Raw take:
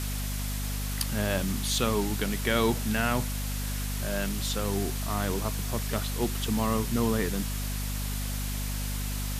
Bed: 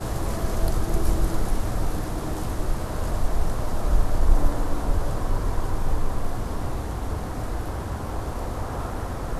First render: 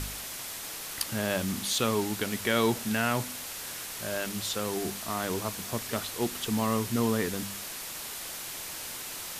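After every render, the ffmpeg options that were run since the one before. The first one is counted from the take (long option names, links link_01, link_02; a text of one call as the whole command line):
ffmpeg -i in.wav -af "bandreject=frequency=50:width_type=h:width=4,bandreject=frequency=100:width_type=h:width=4,bandreject=frequency=150:width_type=h:width=4,bandreject=frequency=200:width_type=h:width=4,bandreject=frequency=250:width_type=h:width=4" out.wav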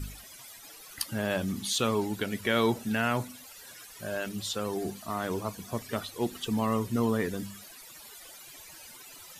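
ffmpeg -i in.wav -af "afftdn=noise_reduction=16:noise_floor=-39" out.wav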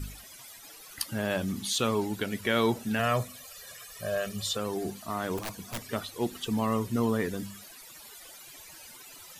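ffmpeg -i in.wav -filter_complex "[0:a]asettb=1/sr,asplit=3[link_01][link_02][link_03];[link_01]atrim=end=2.994[link_04];[link_02]atrim=start=2.99:end=4.57,asetpts=PTS-STARTPTS,afade=type=in:duration=0.004:curve=qsin,afade=type=out:start_time=1.576:duration=0.004:curve=qsin,aecho=1:1:1.7:0.76,atrim=end_sample=69678[link_05];[link_03]atrim=start=4.566[link_06];[link_04][link_05]acrossfade=duration=0.004:curve1=hsin:curve2=qsin[link_07];[link_07][link_06]acrossfade=duration=0.004:curve1=qsin:curve2=hsin,asplit=3[link_08][link_09][link_10];[link_08]afade=type=out:start_time=5.37:duration=0.02[link_11];[link_09]aeval=exprs='(mod(25.1*val(0)+1,2)-1)/25.1':channel_layout=same,afade=type=in:start_time=5.37:duration=0.02,afade=type=out:start_time=5.81:duration=0.02[link_12];[link_10]afade=type=in:start_time=5.81:duration=0.02[link_13];[link_11][link_12][link_13]amix=inputs=3:normalize=0" out.wav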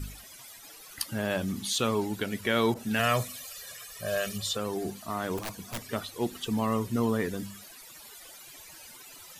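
ffmpeg -i in.wav -filter_complex "[0:a]asettb=1/sr,asplit=3[link_01][link_02][link_03];[link_01]atrim=end=2.744[link_04];[link_02]atrim=start=2.74:end=4.38,asetpts=PTS-STARTPTS,afade=type=in:duration=0.004:curve=qsin,afade=type=out:start_time=1.636:duration=0.004:curve=qsin,adynamicequalizer=threshold=0.00708:dfrequency=1700:dqfactor=0.7:tfrequency=1700:tqfactor=0.7:attack=5:release=100:ratio=0.375:range=3:mode=boostabove:tftype=highshelf[link_05];[link_03]atrim=start=4.376[link_06];[link_04][link_05]acrossfade=duration=0.004:curve1=hsin:curve2=qsin[link_07];[link_07][link_06]acrossfade=duration=0.004:curve1=qsin:curve2=hsin" out.wav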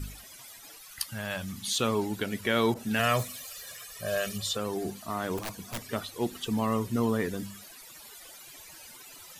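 ffmpeg -i in.wav -filter_complex "[0:a]asettb=1/sr,asplit=3[link_01][link_02][link_03];[link_01]atrim=end=0.784[link_04];[link_02]atrim=start=0.78:end=1.68,asetpts=PTS-STARTPTS,afade=type=in:duration=0.004:curve=qsin,afade=type=out:start_time=0.896:duration=0.004:curve=qsin,equalizer=frequency=350:width_type=o:width=1.5:gain=-14.5[link_05];[link_03]atrim=start=1.676[link_06];[link_04][link_05]acrossfade=duration=0.004:curve1=hsin:curve2=qsin[link_07];[link_07][link_06]acrossfade=duration=0.004:curve1=qsin:curve2=hsin,asettb=1/sr,asplit=3[link_08][link_09][link_10];[link_08]atrim=end=3.194[link_11];[link_09]atrim=start=3.19:end=3.83,asetpts=PTS-STARTPTS,afade=type=in:duration=0.004:curve=qsin,afade=type=out:start_time=0.636:duration=0.004:curve=qsin,acrusher=bits=4:mode=log:mix=0:aa=0.000001[link_12];[link_10]atrim=start=3.826[link_13];[link_11][link_12]acrossfade=duration=0.004:curve1=hsin:curve2=qsin[link_14];[link_14][link_13]acrossfade=duration=0.004:curve1=qsin:curve2=hsin" out.wav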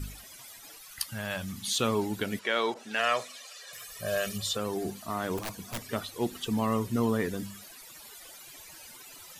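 ffmpeg -i in.wav -filter_complex "[0:a]asettb=1/sr,asplit=3[link_01][link_02][link_03];[link_01]atrim=end=2.394[link_04];[link_02]atrim=start=2.39:end=3.73,asetpts=PTS-STARTPTS,afade=type=in:duration=0.004:curve=qsin,afade=type=out:start_time=1.336:duration=0.004:curve=qsin,highpass=460,lowpass=6400[link_05];[link_03]atrim=start=3.726[link_06];[link_04][link_05]acrossfade=duration=0.004:curve1=hsin:curve2=qsin[link_07];[link_07][link_06]acrossfade=duration=0.004:curve1=qsin:curve2=hsin" out.wav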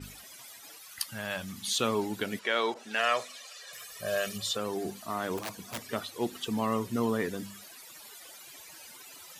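ffmpeg -i in.wav -af "highpass=frequency=190:poles=1,adynamicequalizer=threshold=0.00355:dfrequency=7500:dqfactor=0.7:tfrequency=7500:tqfactor=0.7:attack=5:release=100:ratio=0.375:range=1.5:mode=cutabove:tftype=highshelf" out.wav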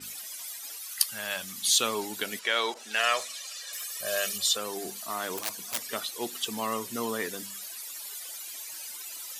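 ffmpeg -i in.wav -af "highpass=frequency=420:poles=1,highshelf=frequency=3500:gain=11.5" out.wav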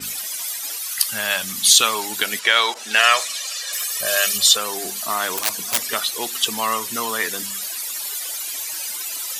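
ffmpeg -i in.wav -filter_complex "[0:a]acrossover=split=770|2400[link_01][link_02][link_03];[link_01]acompressor=threshold=-44dB:ratio=6[link_04];[link_04][link_02][link_03]amix=inputs=3:normalize=0,alimiter=level_in=12dB:limit=-1dB:release=50:level=0:latency=1" out.wav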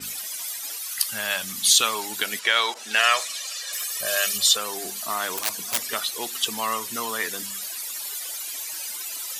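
ffmpeg -i in.wav -af "volume=-4.5dB" out.wav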